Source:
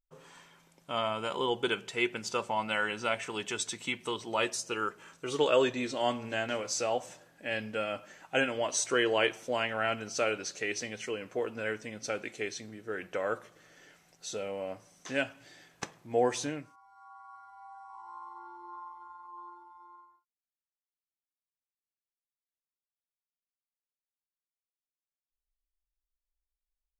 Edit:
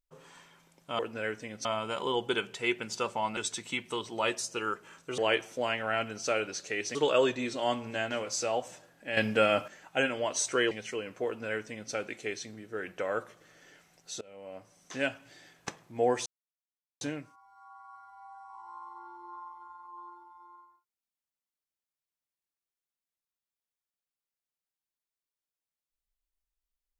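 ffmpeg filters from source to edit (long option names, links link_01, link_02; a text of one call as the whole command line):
ffmpeg -i in.wav -filter_complex "[0:a]asplit=11[link_01][link_02][link_03][link_04][link_05][link_06][link_07][link_08][link_09][link_10][link_11];[link_01]atrim=end=0.992[link_12];[link_02]atrim=start=11.408:end=12.072[link_13];[link_03]atrim=start=0.988:end=2.712[link_14];[link_04]atrim=start=3.518:end=5.332[link_15];[link_05]atrim=start=9.088:end=10.862[link_16];[link_06]atrim=start=5.328:end=7.552[link_17];[link_07]atrim=start=7.548:end=8.062,asetpts=PTS-STARTPTS,volume=9dB[link_18];[link_08]atrim=start=8.058:end=9.092[link_19];[link_09]atrim=start=10.858:end=14.36,asetpts=PTS-STARTPTS,afade=type=out:start_time=3.498:duration=0.004:curve=hsin:silence=0.0707946[link_20];[link_10]atrim=start=14.36:end=16.41,asetpts=PTS-STARTPTS,afade=type=in:duration=0.73:silence=0.0707946,afade=type=out:start_time=2.046:duration=0.004:curve=hsin,apad=pad_dur=0.75[link_21];[link_11]atrim=start=16.41,asetpts=PTS-STARTPTS,afade=type=in:duration=0.004:curve=hsin[link_22];[link_12][link_13]acrossfade=duration=0.004:curve1=hsin:curve2=hsin[link_23];[link_23][link_14]acrossfade=duration=0.004:curve1=hsin:curve2=hsin[link_24];[link_24][link_15]acrossfade=duration=0.004:curve1=hsin:curve2=hsin[link_25];[link_25][link_16]acrossfade=duration=0.004:curve1=hsin:curve2=hsin[link_26];[link_26][link_17]acrossfade=duration=0.004:curve1=hsin:curve2=hsin[link_27];[link_27][link_18]acrossfade=duration=0.004:curve1=hsin:curve2=hsin[link_28];[link_28][link_19]acrossfade=duration=0.004:curve1=hsin:curve2=hsin[link_29];[link_20][link_21][link_22]concat=n=3:v=0:a=1[link_30];[link_29][link_30]acrossfade=duration=0.004:curve1=hsin:curve2=hsin" out.wav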